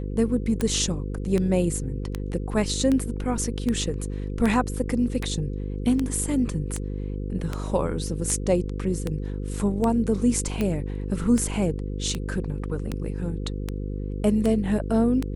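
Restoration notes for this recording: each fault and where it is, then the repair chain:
buzz 50 Hz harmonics 10 -30 dBFS
tick 78 rpm -13 dBFS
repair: de-click; de-hum 50 Hz, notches 10

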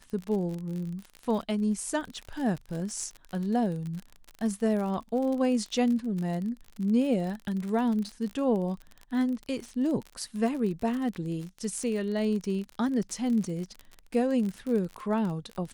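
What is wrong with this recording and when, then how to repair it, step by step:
crackle 44/s -33 dBFS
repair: de-click

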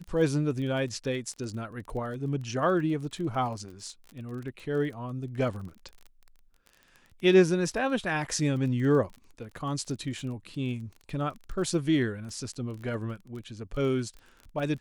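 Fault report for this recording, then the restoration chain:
crackle 25/s -37 dBFS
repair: de-click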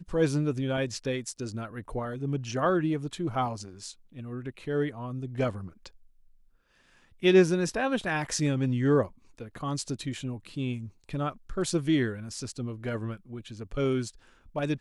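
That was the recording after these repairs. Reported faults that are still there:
none

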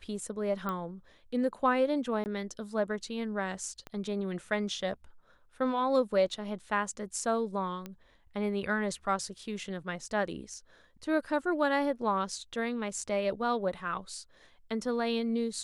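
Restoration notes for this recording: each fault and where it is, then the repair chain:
0.69 pop -21 dBFS
2.24–2.26 gap 19 ms
3.87 pop -27 dBFS
7.86 pop -25 dBFS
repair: de-click; interpolate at 2.24, 19 ms

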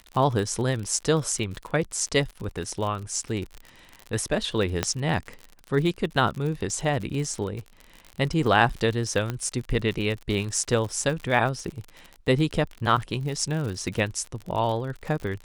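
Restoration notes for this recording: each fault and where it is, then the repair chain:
crackle 55/s -31 dBFS
4.83 pop -8 dBFS
9.3 pop -15 dBFS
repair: de-click

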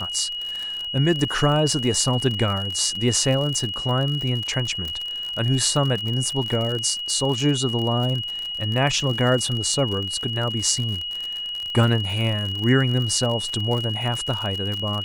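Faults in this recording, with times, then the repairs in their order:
crackle 56/s -26 dBFS
tone 2900 Hz -27 dBFS
4.88 pop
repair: de-click; notch 2900 Hz, Q 30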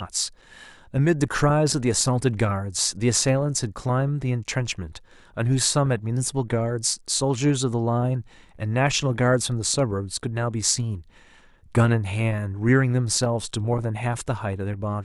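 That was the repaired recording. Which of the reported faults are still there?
none

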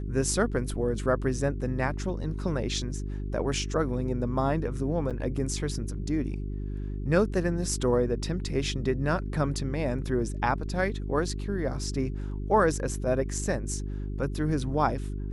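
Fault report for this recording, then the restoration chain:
hum 50 Hz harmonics 8 -33 dBFS
5.1–5.11 gap 7 ms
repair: de-hum 50 Hz, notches 8; interpolate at 5.1, 7 ms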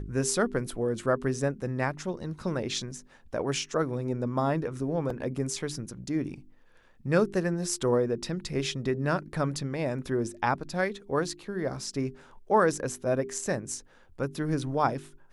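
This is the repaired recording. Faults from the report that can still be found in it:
none

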